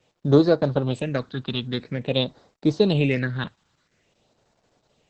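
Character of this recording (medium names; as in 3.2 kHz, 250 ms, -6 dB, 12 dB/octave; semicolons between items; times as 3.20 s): phasing stages 6, 0.49 Hz, lowest notch 570–2800 Hz; a quantiser's noise floor 12-bit, dither none; Opus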